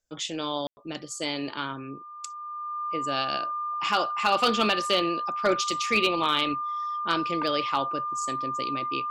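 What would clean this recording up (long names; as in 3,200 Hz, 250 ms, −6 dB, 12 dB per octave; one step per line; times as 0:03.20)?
clipped peaks rebuilt −14 dBFS
notch filter 1,200 Hz, Q 30
ambience match 0:00.67–0:00.77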